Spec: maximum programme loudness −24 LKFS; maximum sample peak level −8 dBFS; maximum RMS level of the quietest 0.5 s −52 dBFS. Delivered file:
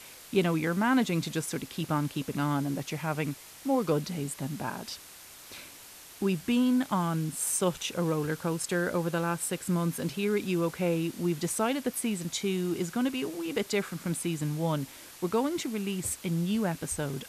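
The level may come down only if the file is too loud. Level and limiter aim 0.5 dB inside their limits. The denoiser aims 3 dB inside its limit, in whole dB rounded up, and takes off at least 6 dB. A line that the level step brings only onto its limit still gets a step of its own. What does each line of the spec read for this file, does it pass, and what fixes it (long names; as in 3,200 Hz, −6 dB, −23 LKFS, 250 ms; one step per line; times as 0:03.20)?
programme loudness −30.0 LKFS: in spec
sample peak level −14.0 dBFS: in spec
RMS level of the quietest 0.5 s −49 dBFS: out of spec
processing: broadband denoise 6 dB, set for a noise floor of −49 dBFS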